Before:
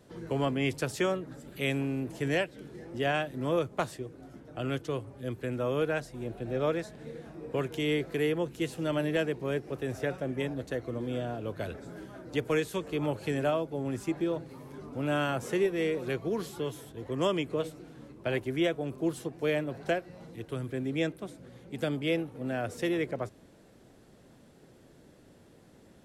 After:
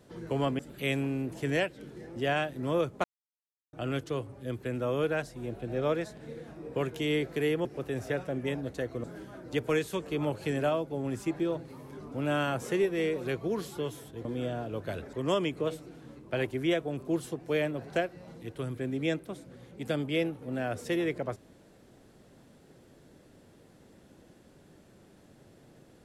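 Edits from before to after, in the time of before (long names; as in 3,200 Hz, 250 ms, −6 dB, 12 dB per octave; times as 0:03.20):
0:00.59–0:01.37: remove
0:03.82–0:04.51: silence
0:08.43–0:09.58: remove
0:10.97–0:11.85: move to 0:17.06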